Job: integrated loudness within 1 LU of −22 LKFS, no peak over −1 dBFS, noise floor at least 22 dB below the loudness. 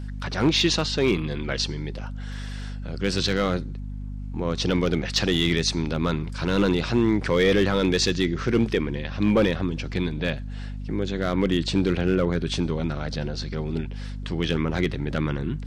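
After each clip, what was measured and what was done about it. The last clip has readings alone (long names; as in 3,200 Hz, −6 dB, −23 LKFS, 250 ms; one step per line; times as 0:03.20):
share of clipped samples 0.3%; peaks flattened at −12.5 dBFS; mains hum 50 Hz; hum harmonics up to 250 Hz; level of the hum −30 dBFS; integrated loudness −24.5 LKFS; sample peak −12.5 dBFS; target loudness −22.0 LKFS
→ clipped peaks rebuilt −12.5 dBFS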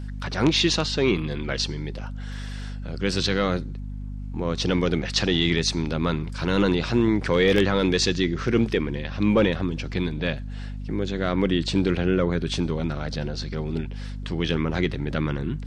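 share of clipped samples 0.0%; mains hum 50 Hz; hum harmonics up to 250 Hz; level of the hum −30 dBFS
→ hum removal 50 Hz, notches 5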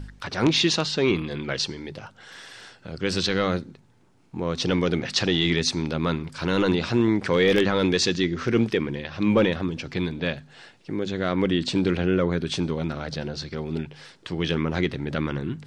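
mains hum none found; integrated loudness −24.5 LKFS; sample peak −4.5 dBFS; target loudness −22.0 LKFS
→ level +2.5 dB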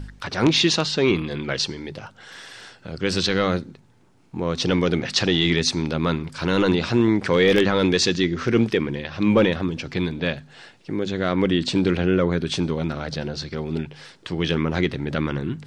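integrated loudness −22.0 LKFS; sample peak −2.0 dBFS; background noise floor −53 dBFS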